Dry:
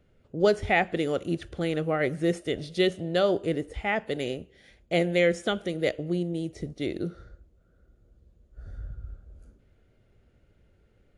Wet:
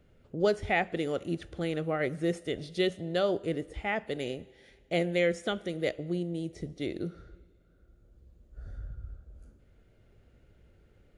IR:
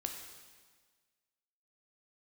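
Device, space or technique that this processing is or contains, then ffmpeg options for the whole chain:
ducked reverb: -filter_complex "[0:a]asplit=3[link_01][link_02][link_03];[1:a]atrim=start_sample=2205[link_04];[link_02][link_04]afir=irnorm=-1:irlink=0[link_05];[link_03]apad=whole_len=492937[link_06];[link_05][link_06]sidechaincompress=threshold=-45dB:ratio=5:attack=45:release=1140,volume=2dB[link_07];[link_01][link_07]amix=inputs=2:normalize=0,volume=-5dB"

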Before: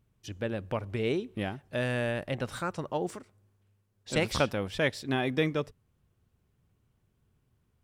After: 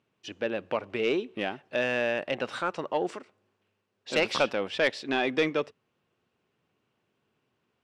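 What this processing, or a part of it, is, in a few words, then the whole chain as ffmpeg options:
intercom: -af "highpass=310,lowpass=4700,equalizer=frequency=2700:width_type=o:width=0.26:gain=5,asoftclip=type=tanh:threshold=-19.5dB,volume=5dB"

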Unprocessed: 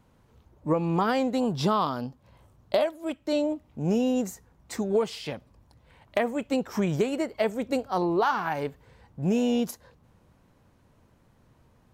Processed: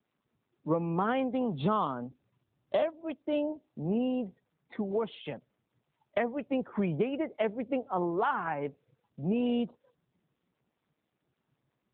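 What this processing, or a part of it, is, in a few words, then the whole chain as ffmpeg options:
mobile call with aggressive noise cancelling: -af "highpass=frequency=120:width=0.5412,highpass=frequency=120:width=1.3066,afftdn=noise_reduction=30:noise_floor=-44,volume=-3.5dB" -ar 8000 -c:a libopencore_amrnb -b:a 10200

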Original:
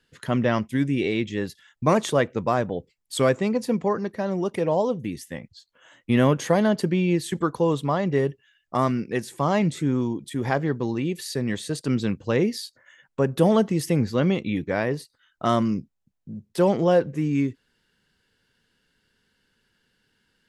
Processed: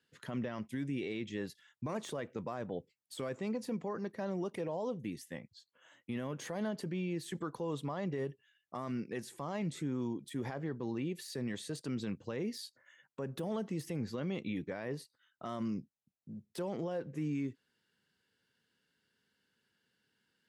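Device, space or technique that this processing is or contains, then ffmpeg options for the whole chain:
podcast mastering chain: -filter_complex "[0:a]asettb=1/sr,asplit=3[link_01][link_02][link_03];[link_01]atrim=end=10.544[link_04];[link_02]atrim=start=10.54:end=11.17,asetpts=PTS-STARTPTS,afade=type=in:duration=0.004:curve=qsin,afade=type=out:start_time=0.626:duration=0.004:curve=qsin,highshelf=frequency=4400:gain=-5.5[link_05];[link_03]atrim=start=11.166[link_06];[link_04][link_05]acrossfade=duration=0.004:curve1=hsin:curve2=qsin[link_07];[link_07][link_06]acrossfade=duration=0.004:curve1=qsin:curve2=hsin,highpass=110,deesser=0.7,acompressor=threshold=-21dB:ratio=3,alimiter=limit=-19.5dB:level=0:latency=1:release=23,volume=-9dB" -ar 44100 -c:a libmp3lame -b:a 128k

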